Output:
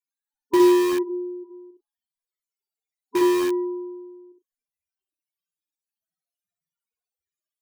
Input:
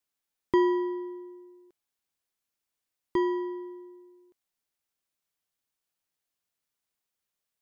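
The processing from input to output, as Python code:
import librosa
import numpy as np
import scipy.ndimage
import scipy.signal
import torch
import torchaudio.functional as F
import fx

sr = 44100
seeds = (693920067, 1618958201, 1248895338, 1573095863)

p1 = fx.steep_lowpass(x, sr, hz=900.0, slope=72, at=(1.02, 1.43), fade=0.02)
p2 = fx.doubler(p1, sr, ms=36.0, db=-12)
p3 = fx.spec_topn(p2, sr, count=8)
p4 = fx.room_early_taps(p3, sr, ms=(29, 62), db=(-14.5, -4.0))
p5 = (np.mod(10.0 ** (25.0 / 20.0) * p4 + 1.0, 2.0) - 1.0) / 10.0 ** (25.0 / 20.0)
p6 = p4 + (p5 * librosa.db_to_amplitude(-7.5))
y = p6 * librosa.db_to_amplitude(4.5)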